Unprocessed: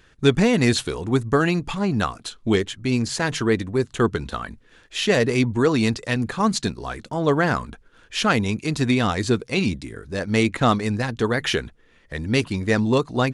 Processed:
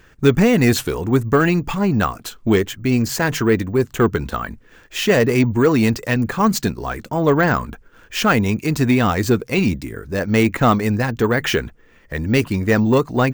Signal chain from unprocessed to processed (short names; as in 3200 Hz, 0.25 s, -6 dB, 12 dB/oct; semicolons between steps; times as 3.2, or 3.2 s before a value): bell 3800 Hz -7 dB 0.65 oct; in parallel at -3 dB: soft clip -18 dBFS, distortion -11 dB; on the sum: careless resampling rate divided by 2×, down filtered, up hold; gain +1 dB